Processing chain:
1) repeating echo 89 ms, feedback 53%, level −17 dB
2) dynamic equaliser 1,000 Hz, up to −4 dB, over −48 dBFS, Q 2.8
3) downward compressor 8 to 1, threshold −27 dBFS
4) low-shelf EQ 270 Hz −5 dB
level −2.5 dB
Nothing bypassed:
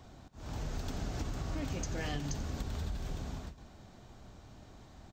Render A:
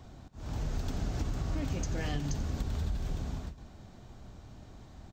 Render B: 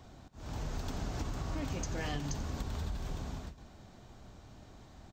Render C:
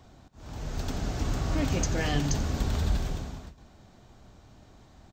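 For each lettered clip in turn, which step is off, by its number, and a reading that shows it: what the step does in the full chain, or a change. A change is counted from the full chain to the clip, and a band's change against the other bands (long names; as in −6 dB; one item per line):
4, 125 Hz band +4.0 dB
2, 1 kHz band +1.5 dB
3, average gain reduction 4.5 dB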